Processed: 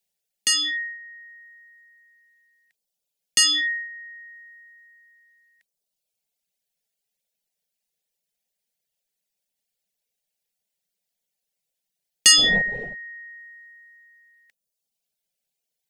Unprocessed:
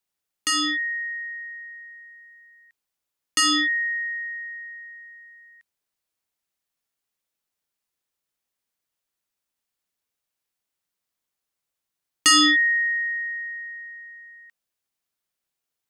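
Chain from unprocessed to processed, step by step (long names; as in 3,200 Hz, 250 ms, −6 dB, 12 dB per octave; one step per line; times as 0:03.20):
0:12.36–0:12.94: wind on the microphone 470 Hz −28 dBFS
reverb reduction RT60 1.1 s
phaser with its sweep stopped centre 310 Hz, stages 6
level +5 dB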